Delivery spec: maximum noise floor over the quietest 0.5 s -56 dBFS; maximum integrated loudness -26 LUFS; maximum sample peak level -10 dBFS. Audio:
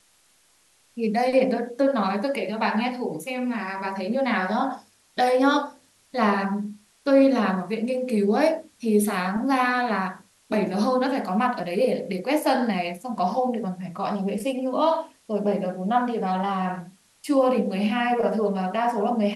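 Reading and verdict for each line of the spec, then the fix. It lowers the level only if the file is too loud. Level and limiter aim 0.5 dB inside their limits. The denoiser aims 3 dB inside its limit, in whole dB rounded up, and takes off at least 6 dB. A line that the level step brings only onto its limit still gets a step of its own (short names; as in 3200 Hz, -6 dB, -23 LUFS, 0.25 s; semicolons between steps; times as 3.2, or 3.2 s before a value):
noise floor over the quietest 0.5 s -61 dBFS: OK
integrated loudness -24.0 LUFS: fail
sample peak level -8.0 dBFS: fail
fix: gain -2.5 dB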